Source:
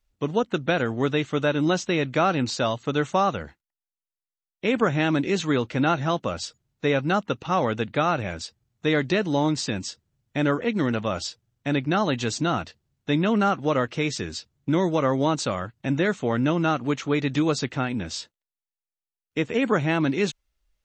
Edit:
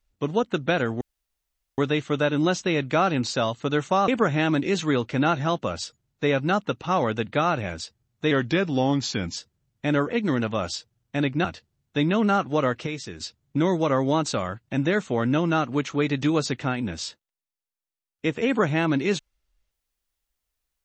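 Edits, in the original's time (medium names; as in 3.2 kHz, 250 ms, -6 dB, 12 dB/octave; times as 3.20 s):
1.01 s: insert room tone 0.77 s
3.31–4.69 s: delete
8.92–9.88 s: speed 91%
11.96–12.57 s: delete
13.99–14.33 s: gain -6.5 dB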